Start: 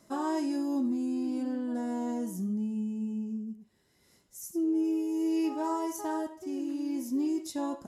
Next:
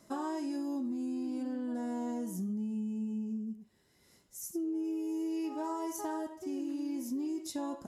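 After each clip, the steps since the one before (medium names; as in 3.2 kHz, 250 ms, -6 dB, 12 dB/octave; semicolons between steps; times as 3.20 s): compression, threshold -33 dBFS, peak gain reduction 7.5 dB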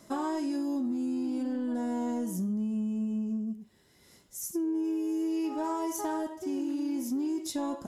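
peaking EQ 3.4 kHz +3.5 dB 0.2 oct; in parallel at -8.5 dB: saturation -38.5 dBFS, distortion -12 dB; on the sum: trim +3 dB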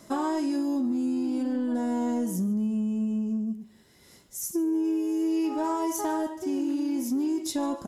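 feedback delay 146 ms, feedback 33%, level -21.5 dB; trim +4 dB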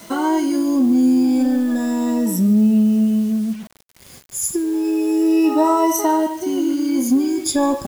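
drifting ripple filter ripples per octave 1.9, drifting +0.32 Hz, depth 18 dB; bit crusher 8-bit; trim +7.5 dB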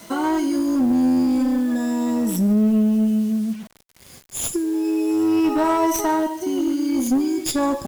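tracing distortion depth 0.035 ms; one-sided clip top -14.5 dBFS; trim -2 dB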